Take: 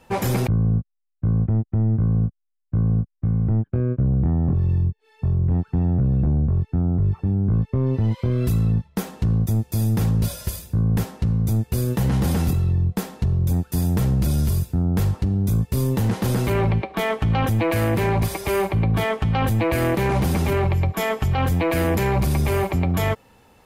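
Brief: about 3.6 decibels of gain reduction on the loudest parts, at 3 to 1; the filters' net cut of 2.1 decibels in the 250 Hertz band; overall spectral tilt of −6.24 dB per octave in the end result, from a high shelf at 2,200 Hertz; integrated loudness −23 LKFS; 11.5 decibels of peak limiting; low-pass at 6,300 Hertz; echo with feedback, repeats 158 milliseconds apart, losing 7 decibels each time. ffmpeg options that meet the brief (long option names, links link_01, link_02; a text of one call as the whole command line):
ffmpeg -i in.wav -af "lowpass=6300,equalizer=frequency=250:width_type=o:gain=-3.5,highshelf=frequency=2200:gain=7.5,acompressor=threshold=-22dB:ratio=3,alimiter=limit=-24dB:level=0:latency=1,aecho=1:1:158|316|474|632|790:0.447|0.201|0.0905|0.0407|0.0183,volume=7.5dB" out.wav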